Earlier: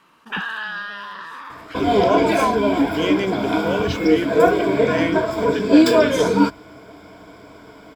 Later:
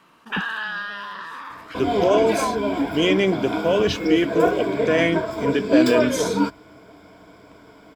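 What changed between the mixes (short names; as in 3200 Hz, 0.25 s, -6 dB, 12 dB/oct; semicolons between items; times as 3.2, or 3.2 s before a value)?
speech +4.0 dB; second sound -5.0 dB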